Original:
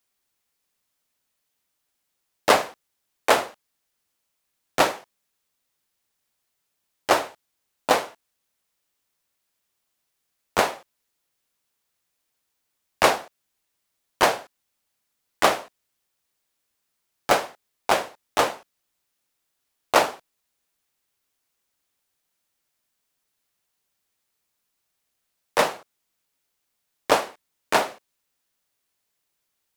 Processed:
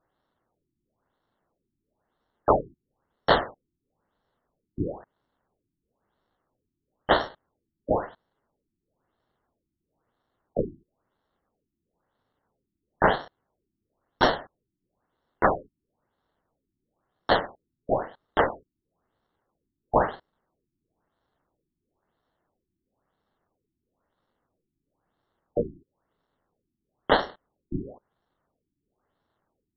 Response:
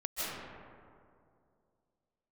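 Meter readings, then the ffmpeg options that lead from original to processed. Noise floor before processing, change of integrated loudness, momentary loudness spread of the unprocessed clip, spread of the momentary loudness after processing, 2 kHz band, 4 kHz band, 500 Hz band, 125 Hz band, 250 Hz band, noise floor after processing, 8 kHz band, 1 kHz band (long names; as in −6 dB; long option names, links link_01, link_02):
−78 dBFS, −3.5 dB, 17 LU, 17 LU, −4.5 dB, −6.0 dB, −2.0 dB, +6.5 dB, +1.5 dB, −84 dBFS, below −30 dB, −3.5 dB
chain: -af "acrusher=samples=18:mix=1:aa=0.000001,asoftclip=type=tanh:threshold=-8.5dB,afftfilt=real='re*lt(b*sr/1024,350*pow(5700/350,0.5+0.5*sin(2*PI*1*pts/sr)))':imag='im*lt(b*sr/1024,350*pow(5700/350,0.5+0.5*sin(2*PI*1*pts/sr)))':win_size=1024:overlap=0.75"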